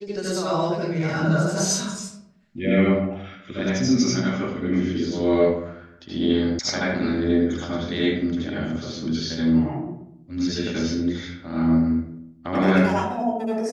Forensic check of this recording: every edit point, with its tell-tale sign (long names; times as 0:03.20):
0:06.59: cut off before it has died away